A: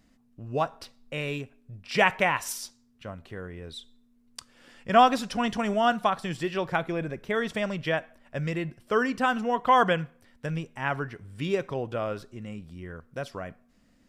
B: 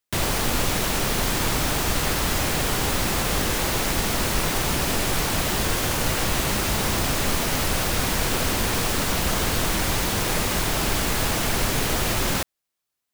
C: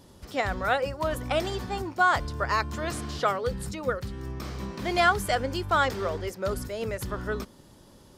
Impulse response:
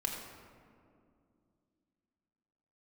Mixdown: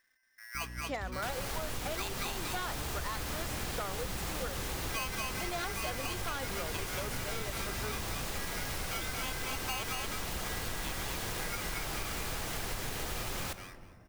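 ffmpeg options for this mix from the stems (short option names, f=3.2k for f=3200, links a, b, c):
-filter_complex "[0:a]aeval=exprs='val(0)*sgn(sin(2*PI*1800*n/s))':c=same,volume=-11dB,asplit=2[a][b];[b]volume=-3dB[c];[1:a]equalizer=f=270:w=1.5:g=-3.5,adelay=1100,volume=-11.5dB,asplit=2[d][e];[e]volume=-10.5dB[f];[2:a]aeval=exprs='val(0)+0.0141*(sin(2*PI*60*n/s)+sin(2*PI*2*60*n/s)/2+sin(2*PI*3*60*n/s)/3+sin(2*PI*4*60*n/s)/4+sin(2*PI*5*60*n/s)/5)':c=same,aeval=exprs='0.133*(abs(mod(val(0)/0.133+3,4)-2)-1)':c=same,adelay=550,volume=-5.5dB[g];[3:a]atrim=start_sample=2205[h];[f][h]afir=irnorm=-1:irlink=0[i];[c]aecho=0:1:231|462|693:1|0.15|0.0225[j];[a][d][g][i][j]amix=inputs=5:normalize=0,acompressor=threshold=-33dB:ratio=6"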